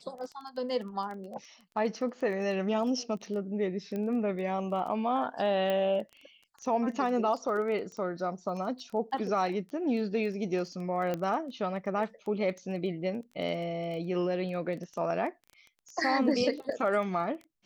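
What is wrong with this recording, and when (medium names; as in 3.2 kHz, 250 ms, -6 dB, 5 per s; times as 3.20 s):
crackle 14 per s -38 dBFS
3.96 s: pop -24 dBFS
5.70 s: pop -19 dBFS
11.14 s: pop -19 dBFS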